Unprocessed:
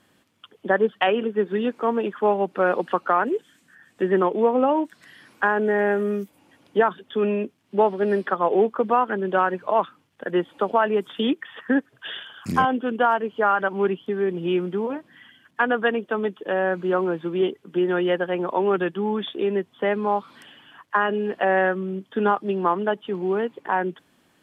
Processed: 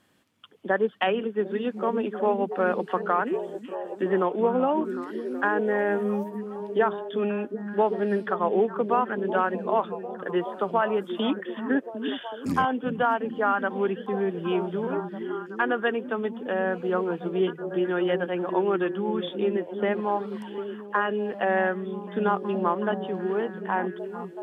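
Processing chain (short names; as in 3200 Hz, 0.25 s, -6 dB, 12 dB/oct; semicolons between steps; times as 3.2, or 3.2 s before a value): delay with a stepping band-pass 0.375 s, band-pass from 170 Hz, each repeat 0.7 oct, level -3 dB; gain -4 dB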